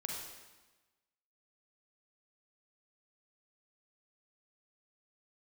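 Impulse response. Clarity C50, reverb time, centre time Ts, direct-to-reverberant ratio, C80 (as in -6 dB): 0.5 dB, 1.2 s, 66 ms, -1.0 dB, 3.0 dB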